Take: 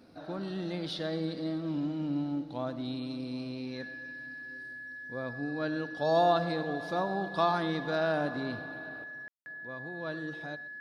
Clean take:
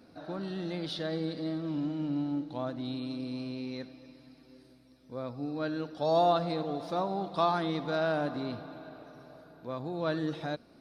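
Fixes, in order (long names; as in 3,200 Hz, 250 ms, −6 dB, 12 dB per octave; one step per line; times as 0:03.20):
notch filter 1,700 Hz, Q 30
ambience match 0:09.28–0:09.46
echo removal 123 ms −18 dB
level 0 dB, from 0:09.04 +7 dB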